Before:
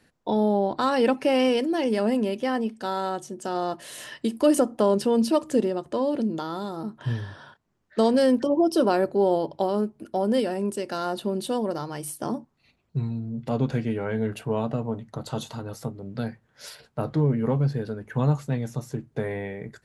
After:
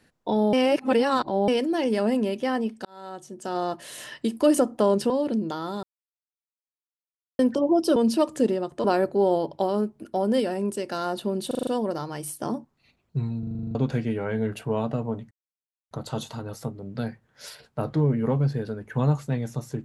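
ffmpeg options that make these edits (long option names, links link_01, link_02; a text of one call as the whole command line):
ffmpeg -i in.wav -filter_complex "[0:a]asplit=24[link_01][link_02][link_03][link_04][link_05][link_06][link_07][link_08][link_09][link_10][link_11][link_12][link_13][link_14][link_15][link_16][link_17][link_18][link_19][link_20][link_21][link_22][link_23][link_24];[link_01]atrim=end=0.532[link_25];[link_02]atrim=start=0.528:end=1.482,asetpts=PTS-STARTPTS,areverse[link_26];[link_03]atrim=start=1.478:end=2.85,asetpts=PTS-STARTPTS,afade=type=out:start_time=1.368:duration=0.004:curve=hsin[link_27];[link_04]atrim=start=2.85:end=5.102,asetpts=PTS-STARTPTS,afade=type=in:duration=0.74[link_28];[link_05]atrim=start=5.978:end=6.71,asetpts=PTS-STARTPTS,afade=type=out:start_time=0.728:duration=0.004:curve=hsin[link_29];[link_06]atrim=start=6.71:end=8.27,asetpts=PTS-STARTPTS,volume=0[link_30];[link_07]atrim=start=8.27:end=8.842,asetpts=PTS-STARTPTS,afade=type=in:duration=0.004:curve=hsin[link_31];[link_08]atrim=start=5.098:end=5.982[link_32];[link_09]atrim=start=8.838:end=11.512[link_33];[link_10]atrim=start=11.468:end=11.512[link_34];[link_11]atrim=start=11.468:end=11.512[link_35];[link_12]atrim=start=11.468:end=11.512[link_36];[link_13]atrim=start=11.468:end=11.512[link_37];[link_14]atrim=start=11.468:end=13.232[link_38];[link_15]atrim=start=13.188:end=13.232[link_39];[link_16]atrim=start=13.188:end=13.232[link_40];[link_17]atrim=start=13.188:end=13.232[link_41];[link_18]atrim=start=13.188:end=13.232[link_42];[link_19]atrim=start=13.188:end=13.232[link_43];[link_20]atrim=start=13.188:end=13.232[link_44];[link_21]atrim=start=13.188:end=13.232[link_45];[link_22]atrim=start=13.188:end=13.232[link_46];[link_23]atrim=start=13.548:end=15.11,asetpts=PTS-STARTPTS,afade=type=out:start_time=1.558:duration=0.004:curve=hsin,apad=pad_dur=0.6[link_47];[link_24]atrim=start=15.11,asetpts=PTS-STARTPTS,afade=type=in:duration=0.004:curve=hsin[link_48];[link_25][link_26]acrossfade=duration=0.004:curve1=hsin:curve2=hsin[link_49];[link_27][link_28]concat=n=2:v=0:a=1[link_50];[link_49][link_50]acrossfade=duration=0.004:curve1=hsin:curve2=hsin[link_51];[link_29][link_30][link_31]concat=n=3:v=0:a=1[link_52];[link_51][link_52]acrossfade=duration=0.004:curve1=hsin:curve2=hsin[link_53];[link_53][link_32]acrossfade=duration=0.004:curve1=hsin:curve2=hsin[link_54];[link_54][link_33]acrossfade=duration=0.004:curve1=hsin:curve2=hsin[link_55];[link_55][link_34]acrossfade=duration=0.004:curve1=hsin:curve2=hsin[link_56];[link_56][link_35]acrossfade=duration=0.004:curve1=hsin:curve2=hsin[link_57];[link_57][link_36]acrossfade=duration=0.004:curve1=hsin:curve2=hsin[link_58];[link_58][link_37]acrossfade=duration=0.004:curve1=hsin:curve2=hsin[link_59];[link_59][link_38]acrossfade=duration=0.004:curve1=hsin:curve2=hsin[link_60];[link_60][link_39]acrossfade=duration=0.004:curve1=hsin:curve2=hsin[link_61];[link_61][link_40]acrossfade=duration=0.004:curve1=hsin:curve2=hsin[link_62];[link_62][link_41]acrossfade=duration=0.004:curve1=hsin:curve2=hsin[link_63];[link_63][link_42]acrossfade=duration=0.004:curve1=hsin:curve2=hsin[link_64];[link_64][link_43]acrossfade=duration=0.004:curve1=hsin:curve2=hsin[link_65];[link_65][link_44]acrossfade=duration=0.004:curve1=hsin:curve2=hsin[link_66];[link_66][link_45]acrossfade=duration=0.004:curve1=hsin:curve2=hsin[link_67];[link_67][link_46]acrossfade=duration=0.004:curve1=hsin:curve2=hsin[link_68];[link_47][link_48]concat=n=2:v=0:a=1[link_69];[link_68][link_69]acrossfade=duration=0.004:curve1=hsin:curve2=hsin" out.wav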